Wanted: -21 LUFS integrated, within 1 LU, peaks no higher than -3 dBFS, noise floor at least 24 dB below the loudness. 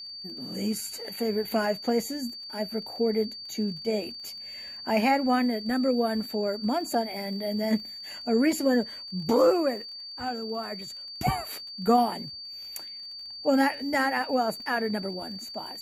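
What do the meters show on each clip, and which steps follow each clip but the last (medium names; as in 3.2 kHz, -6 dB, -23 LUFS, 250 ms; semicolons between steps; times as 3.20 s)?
tick rate 33 per s; steady tone 4.6 kHz; tone level -38 dBFS; loudness -28.0 LUFS; peak level -11.0 dBFS; loudness target -21.0 LUFS
-> de-click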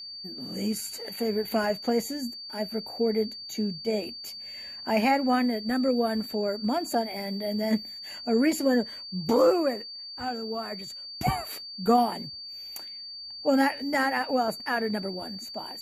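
tick rate 0 per s; steady tone 4.6 kHz; tone level -38 dBFS
-> band-stop 4.6 kHz, Q 30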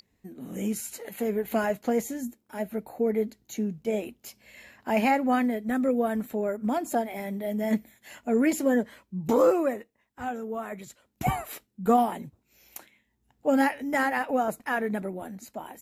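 steady tone not found; loudness -28.0 LUFS; peak level -11.5 dBFS; loudness target -21.0 LUFS
-> trim +7 dB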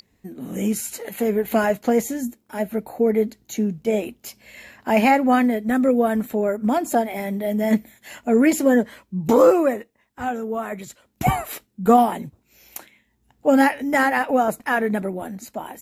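loudness -21.0 LUFS; peak level -4.5 dBFS; noise floor -66 dBFS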